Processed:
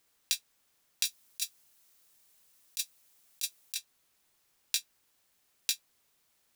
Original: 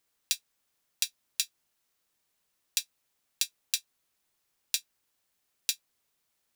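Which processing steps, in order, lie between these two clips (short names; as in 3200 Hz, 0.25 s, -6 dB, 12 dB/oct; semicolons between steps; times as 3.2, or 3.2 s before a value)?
1.05–3.75 high shelf 4800 Hz +8.5 dB; negative-ratio compressor -28 dBFS, ratio -0.5; soft clip -8 dBFS, distortion -19 dB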